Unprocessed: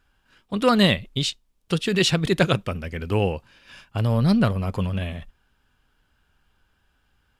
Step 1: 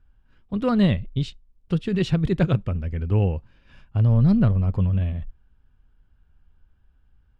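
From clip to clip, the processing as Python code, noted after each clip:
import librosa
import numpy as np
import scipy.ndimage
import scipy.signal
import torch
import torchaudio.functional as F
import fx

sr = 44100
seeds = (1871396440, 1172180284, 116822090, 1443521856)

y = fx.riaa(x, sr, side='playback')
y = y * 10.0 ** (-7.5 / 20.0)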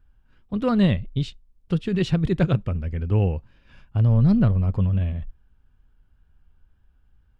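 y = fx.wow_flutter(x, sr, seeds[0], rate_hz=2.1, depth_cents=26.0)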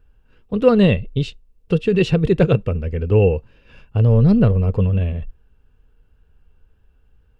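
y = fx.small_body(x, sr, hz=(460.0, 2700.0), ring_ms=35, db=13)
y = y * 10.0 ** (3.5 / 20.0)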